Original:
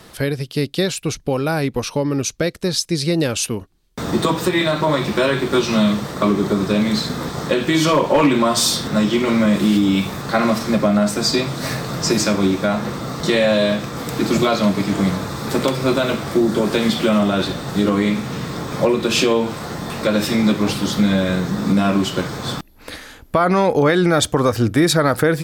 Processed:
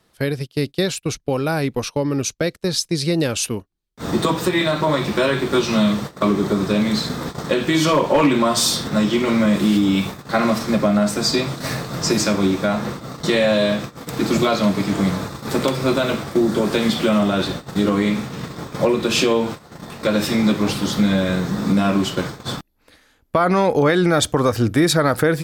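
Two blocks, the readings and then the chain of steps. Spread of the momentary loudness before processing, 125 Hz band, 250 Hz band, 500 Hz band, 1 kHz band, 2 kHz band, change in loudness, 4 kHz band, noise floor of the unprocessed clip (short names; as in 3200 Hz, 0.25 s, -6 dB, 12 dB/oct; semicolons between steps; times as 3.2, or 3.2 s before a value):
9 LU, -1.0 dB, -1.0 dB, -1.0 dB, -1.0 dB, -1.0 dB, -1.0 dB, -1.0 dB, -42 dBFS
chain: gate -25 dBFS, range -17 dB; gain -1 dB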